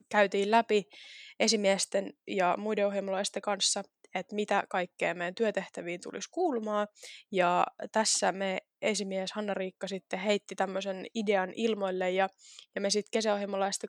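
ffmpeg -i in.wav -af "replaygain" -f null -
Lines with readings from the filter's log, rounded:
track_gain = +9.8 dB
track_peak = 0.209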